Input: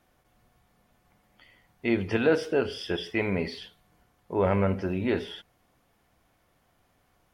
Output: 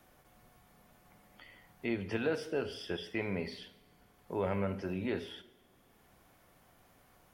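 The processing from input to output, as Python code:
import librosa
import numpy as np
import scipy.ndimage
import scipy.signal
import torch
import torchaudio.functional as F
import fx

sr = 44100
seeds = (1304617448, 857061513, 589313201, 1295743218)

y = fx.high_shelf(x, sr, hz=8300.0, db=7.5)
y = fx.rev_double_slope(y, sr, seeds[0], early_s=0.83, late_s=2.1, knee_db=-18, drr_db=14.0)
y = fx.band_squash(y, sr, depth_pct=40)
y = y * librosa.db_to_amplitude(-8.5)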